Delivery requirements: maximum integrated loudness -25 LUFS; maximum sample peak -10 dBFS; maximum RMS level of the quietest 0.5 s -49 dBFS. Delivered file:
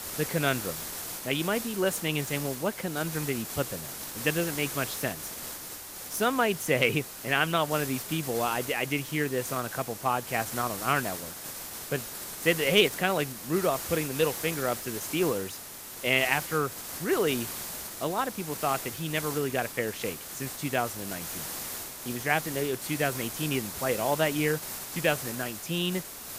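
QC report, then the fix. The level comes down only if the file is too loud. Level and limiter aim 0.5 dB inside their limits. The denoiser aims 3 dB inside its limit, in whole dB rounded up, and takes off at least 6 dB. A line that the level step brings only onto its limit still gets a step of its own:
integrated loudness -29.0 LUFS: pass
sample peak -9.0 dBFS: fail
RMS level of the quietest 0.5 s -42 dBFS: fail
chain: noise reduction 10 dB, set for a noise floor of -42 dBFS; peak limiter -10.5 dBFS

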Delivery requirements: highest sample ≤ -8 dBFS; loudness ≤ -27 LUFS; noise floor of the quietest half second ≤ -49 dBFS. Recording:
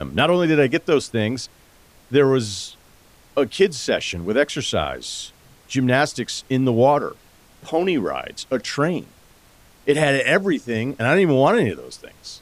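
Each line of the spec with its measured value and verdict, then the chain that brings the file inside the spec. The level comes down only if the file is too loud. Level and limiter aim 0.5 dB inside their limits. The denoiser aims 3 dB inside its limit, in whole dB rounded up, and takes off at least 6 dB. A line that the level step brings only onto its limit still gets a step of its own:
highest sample -4.0 dBFS: fail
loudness -20.5 LUFS: fail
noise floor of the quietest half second -52 dBFS: pass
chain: trim -7 dB

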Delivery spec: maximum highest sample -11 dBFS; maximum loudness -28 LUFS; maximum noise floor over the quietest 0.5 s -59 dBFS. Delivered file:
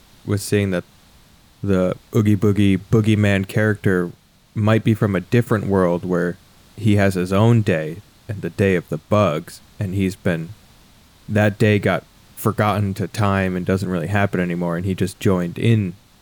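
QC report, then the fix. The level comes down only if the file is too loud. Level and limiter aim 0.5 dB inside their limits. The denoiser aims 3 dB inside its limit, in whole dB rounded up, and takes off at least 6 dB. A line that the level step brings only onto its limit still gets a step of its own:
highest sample -5.0 dBFS: fail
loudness -19.5 LUFS: fail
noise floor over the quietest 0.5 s -50 dBFS: fail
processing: noise reduction 6 dB, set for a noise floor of -50 dBFS; trim -9 dB

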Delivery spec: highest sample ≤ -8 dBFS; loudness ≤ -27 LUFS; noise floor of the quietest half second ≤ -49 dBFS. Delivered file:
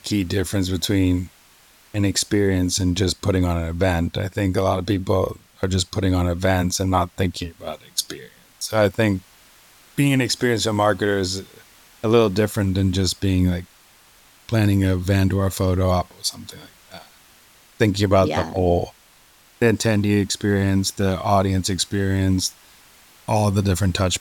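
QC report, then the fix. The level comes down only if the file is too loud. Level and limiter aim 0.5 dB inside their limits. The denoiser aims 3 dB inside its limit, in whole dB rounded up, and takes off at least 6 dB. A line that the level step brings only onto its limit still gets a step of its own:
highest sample -4.5 dBFS: fail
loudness -21.0 LUFS: fail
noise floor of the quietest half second -53 dBFS: pass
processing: trim -6.5 dB

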